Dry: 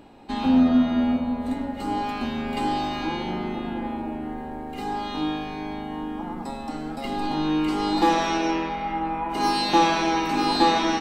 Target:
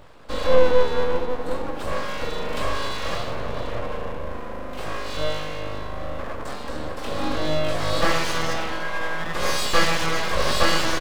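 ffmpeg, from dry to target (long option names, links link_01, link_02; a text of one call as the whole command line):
ffmpeg -i in.wav -af "asuperstop=centerf=2000:order=12:qfactor=3.6,aecho=1:1:20|43|69.45|99.87|134.8:0.631|0.398|0.251|0.158|0.1,aeval=exprs='abs(val(0))':channel_layout=same,volume=1.5dB" out.wav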